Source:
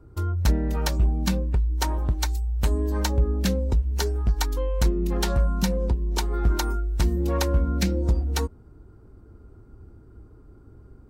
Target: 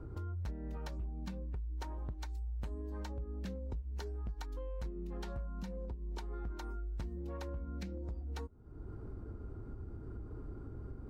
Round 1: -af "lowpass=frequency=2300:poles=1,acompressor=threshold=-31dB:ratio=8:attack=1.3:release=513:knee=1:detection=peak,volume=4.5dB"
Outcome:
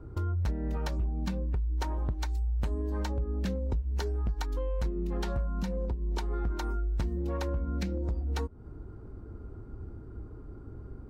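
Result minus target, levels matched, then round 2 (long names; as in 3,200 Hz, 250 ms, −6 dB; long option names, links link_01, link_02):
downward compressor: peak gain reduction −10 dB
-af "lowpass=frequency=2300:poles=1,acompressor=threshold=-42.5dB:ratio=8:attack=1.3:release=513:knee=1:detection=peak,volume=4.5dB"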